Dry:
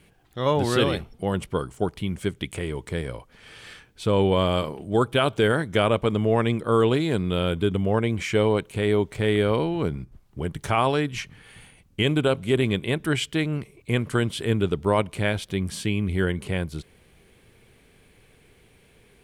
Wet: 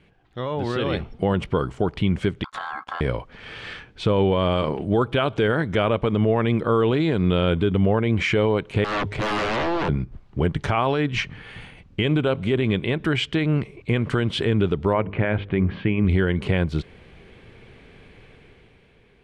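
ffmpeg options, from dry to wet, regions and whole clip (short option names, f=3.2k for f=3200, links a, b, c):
-filter_complex "[0:a]asettb=1/sr,asplit=3[a][b][c];[a]atrim=end=2.444[d];[b]atrim=start=2.44:end=3.01,asetpts=PTS-STARTPTS,afade=t=in:d=0.004:c=qsin,afade=t=out:st=0.566:d=0.004:c=qsin,agate=range=-17dB:threshold=-42dB:ratio=16:release=100:detection=peak,aeval=exprs='val(0)*sin(2*PI*1200*n/s)':c=same,acompressor=threshold=-35dB:ratio=10:attack=3.2:release=140:knee=1:detection=peak[e];[c]atrim=start=3.006[f];[d][e]acrossfade=d=0.004:c1=hsin:c2=qsin[g];[g][f]acrossfade=d=0.004:c1=qsin:c2=hsin,asettb=1/sr,asplit=3[h][i][j];[h]atrim=end=8.844[k];[i]atrim=start=8.84:end=9.89,asetpts=PTS-STARTPTS,afade=t=in:d=0.004:c=qsin,afade=t=out:st=1.046:d=0.004:c=qsin,bandreject=f=50:t=h:w=6,bandreject=f=100:t=h:w=6,aeval=exprs='0.0422*(abs(mod(val(0)/0.0422+3,4)-2)-1)':c=same[l];[j]atrim=start=9.886[m];[k][l]acrossfade=d=0.004:c1=hsin:c2=qsin[n];[n][m]acrossfade=d=0.004:c1=qsin:c2=hsin,asettb=1/sr,asplit=3[o][p][q];[o]atrim=end=14.934[r];[p]atrim=start=14.93:end=16.05,asetpts=PTS-STARTPTS,afade=t=in:d=0.004:c=qsin,afade=t=out:st=1.116:d=0.004:c=qsin,lowpass=f=2.4k:w=0.5412,lowpass=f=2.4k:w=1.3066,bandreject=f=50:t=h:w=6,bandreject=f=100:t=h:w=6,bandreject=f=150:t=h:w=6,bandreject=f=200:t=h:w=6,bandreject=f=250:t=h:w=6,bandreject=f=300:t=h:w=6,bandreject=f=350:t=h:w=6,bandreject=f=400:t=h:w=6,bandreject=f=450:t=h:w=6,bandreject=f=500:t=h:w=6[s];[q]atrim=start=16.046[t];[r][s]acrossfade=d=0.004:c1=hsin:c2=qsin[u];[u][t]acrossfade=d=0.004:c1=qsin:c2=hsin,alimiter=limit=-20dB:level=0:latency=1:release=128,dynaudnorm=f=130:g=13:m=9dB,lowpass=3.5k"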